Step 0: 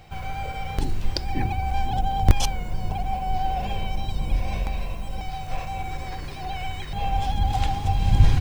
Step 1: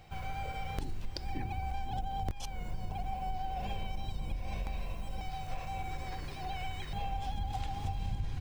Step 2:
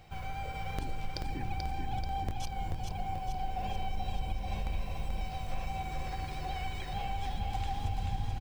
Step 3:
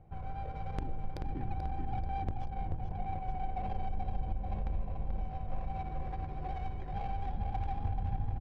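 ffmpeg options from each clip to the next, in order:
-af "acompressor=threshold=-24dB:ratio=10,volume=-7dB"
-af "aecho=1:1:435|870|1305|1740|2175|2610|3045|3480:0.596|0.34|0.194|0.11|0.0629|0.0358|0.0204|0.0116"
-af "adynamicsmooth=sensitivity=2.5:basefreq=670"

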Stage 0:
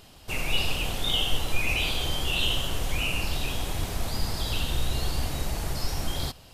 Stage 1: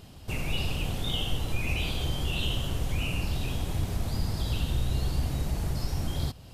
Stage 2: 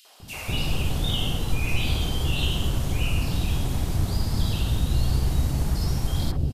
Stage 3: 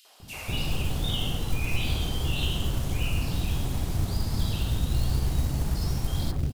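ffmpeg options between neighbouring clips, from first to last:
-filter_complex "[0:a]equalizer=f=110:w=0.34:g=11,asplit=2[a][b];[b]acompressor=threshold=-30dB:ratio=6,volume=0dB[c];[a][c]amix=inputs=2:normalize=0,volume=-9dB"
-filter_complex "[0:a]acrossover=split=560|2300[a][b][c];[b]adelay=50[d];[a]adelay=200[e];[e][d][c]amix=inputs=3:normalize=0,volume=5.5dB"
-af "acrusher=bits=6:mode=log:mix=0:aa=0.000001,volume=-3dB"

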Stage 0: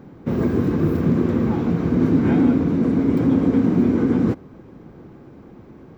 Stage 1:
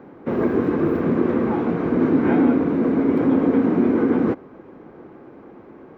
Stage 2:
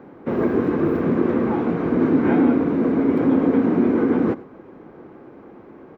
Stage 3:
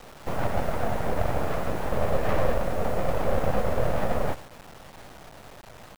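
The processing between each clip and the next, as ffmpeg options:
-filter_complex "[0:a]acrossover=split=270 2700:gain=0.178 1 0.158[a][b][c];[a][b][c]amix=inputs=3:normalize=0,volume=4.5dB"
-af "aecho=1:1:95:0.106"
-af "aeval=exprs='abs(val(0))':c=same,acrusher=bits=4:dc=4:mix=0:aa=0.000001,volume=-4dB"

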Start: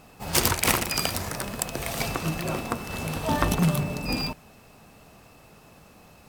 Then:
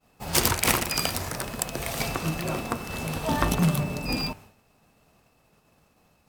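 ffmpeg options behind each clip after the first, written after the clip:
-af "agate=range=-33dB:threshold=-43dB:ratio=3:detection=peak,bandreject=f=98.95:t=h:w=4,bandreject=f=197.9:t=h:w=4,bandreject=f=296.85:t=h:w=4,bandreject=f=395.8:t=h:w=4,bandreject=f=494.75:t=h:w=4,bandreject=f=593.7:t=h:w=4,bandreject=f=692.65:t=h:w=4,bandreject=f=791.6:t=h:w=4,bandreject=f=890.55:t=h:w=4,bandreject=f=989.5:t=h:w=4,bandreject=f=1.08845k:t=h:w=4,bandreject=f=1.1874k:t=h:w=4,bandreject=f=1.28635k:t=h:w=4,bandreject=f=1.3853k:t=h:w=4,bandreject=f=1.48425k:t=h:w=4,bandreject=f=1.5832k:t=h:w=4,bandreject=f=1.68215k:t=h:w=4,bandreject=f=1.7811k:t=h:w=4,bandreject=f=1.88005k:t=h:w=4,bandreject=f=1.979k:t=h:w=4,bandreject=f=2.07795k:t=h:w=4,bandreject=f=2.1769k:t=h:w=4,bandreject=f=2.27585k:t=h:w=4,bandreject=f=2.3748k:t=h:w=4,bandreject=f=2.47375k:t=h:w=4,bandreject=f=2.5727k:t=h:w=4,bandreject=f=2.67165k:t=h:w=4,bandreject=f=2.7706k:t=h:w=4,bandreject=f=2.86955k:t=h:w=4,bandreject=f=2.9685k:t=h:w=4"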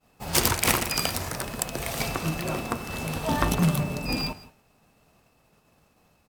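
-af "aecho=1:1:167:0.1"

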